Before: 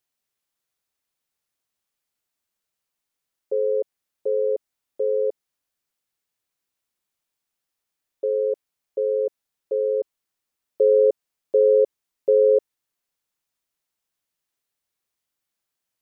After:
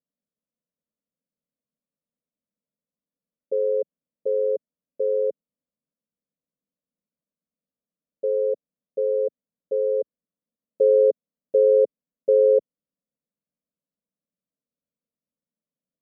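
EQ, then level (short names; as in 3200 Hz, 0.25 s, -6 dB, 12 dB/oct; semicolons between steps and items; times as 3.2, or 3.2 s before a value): Butterworth band-pass 330 Hz, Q 0.52; tilt -5 dB/oct; fixed phaser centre 540 Hz, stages 8; -3.5 dB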